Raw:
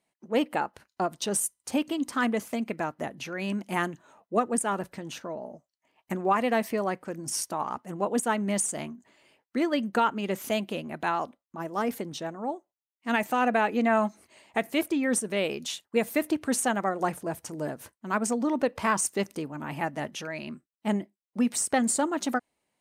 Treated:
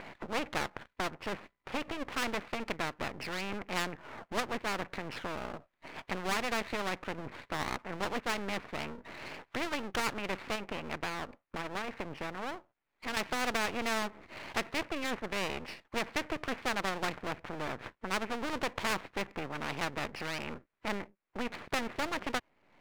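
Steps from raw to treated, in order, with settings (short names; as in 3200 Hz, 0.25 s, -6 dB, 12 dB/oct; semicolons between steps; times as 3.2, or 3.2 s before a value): upward compressor, threshold -32 dBFS; steep low-pass 2500 Hz 72 dB/oct; half-wave rectifier; 10.55–13.17 compressor, threshold -32 dBFS, peak gain reduction 9.5 dB; spectral compressor 2:1; gain -3.5 dB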